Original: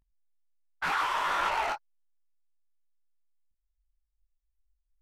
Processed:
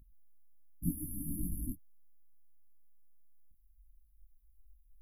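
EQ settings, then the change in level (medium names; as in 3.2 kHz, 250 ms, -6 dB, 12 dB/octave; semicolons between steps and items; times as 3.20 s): brick-wall FIR band-stop 310–10000 Hz; +15.0 dB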